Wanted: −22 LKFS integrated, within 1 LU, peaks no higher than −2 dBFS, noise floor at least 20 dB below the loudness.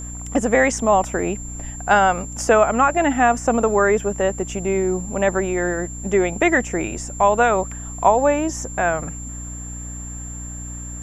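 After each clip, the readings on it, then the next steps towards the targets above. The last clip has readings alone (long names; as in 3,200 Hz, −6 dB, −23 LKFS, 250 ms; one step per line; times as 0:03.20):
mains hum 60 Hz; hum harmonics up to 300 Hz; level of the hum −31 dBFS; interfering tone 7,300 Hz; level of the tone −34 dBFS; integrated loudness −19.5 LKFS; sample peak −2.5 dBFS; target loudness −22.0 LKFS
→ mains-hum notches 60/120/180/240/300 Hz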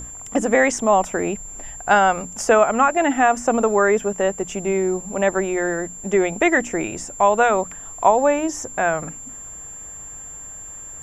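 mains hum none found; interfering tone 7,300 Hz; level of the tone −34 dBFS
→ notch filter 7,300 Hz, Q 30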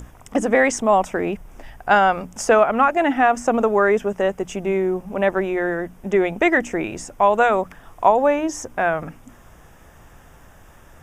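interfering tone none found; integrated loudness −19.5 LKFS; sample peak −3.0 dBFS; target loudness −22.0 LKFS
→ level −2.5 dB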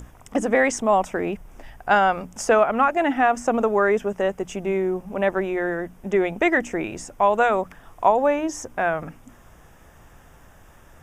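integrated loudness −22.0 LKFS; sample peak −5.5 dBFS; background noise floor −50 dBFS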